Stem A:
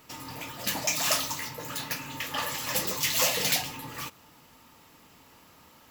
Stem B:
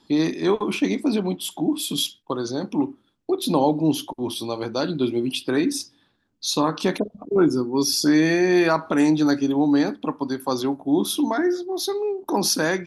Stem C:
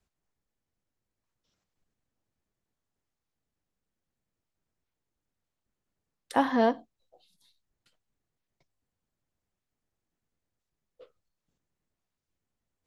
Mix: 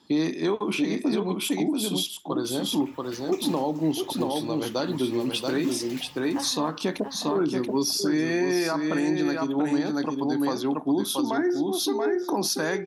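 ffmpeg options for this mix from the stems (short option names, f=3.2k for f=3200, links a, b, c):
-filter_complex "[0:a]highshelf=f=4k:g=-12,acompressor=mode=upward:threshold=-30dB:ratio=2.5,adelay=2450,volume=-11dB,asplit=2[a][b];[b]volume=-12.5dB[c];[1:a]highpass=100,volume=-0.5dB,asplit=2[d][e];[e]volume=-5dB[f];[2:a]volume=-10.5dB,asplit=2[g][h];[h]volume=-3.5dB[i];[c][f][i]amix=inputs=3:normalize=0,aecho=0:1:681:1[j];[a][d][g][j]amix=inputs=4:normalize=0,alimiter=limit=-16dB:level=0:latency=1:release=292"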